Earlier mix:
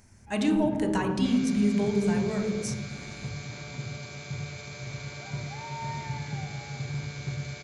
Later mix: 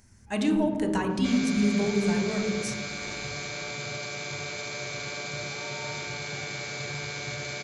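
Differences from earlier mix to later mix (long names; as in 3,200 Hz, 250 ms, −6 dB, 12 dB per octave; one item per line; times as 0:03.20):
first sound −7.5 dB
second sound +8.0 dB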